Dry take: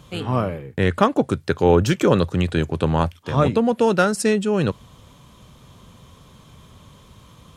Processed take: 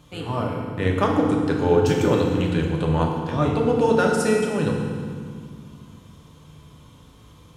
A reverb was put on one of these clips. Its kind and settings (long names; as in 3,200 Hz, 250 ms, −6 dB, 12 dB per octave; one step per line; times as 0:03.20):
feedback delay network reverb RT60 2 s, low-frequency decay 1.6×, high-frequency decay 0.8×, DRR −1 dB
level −6 dB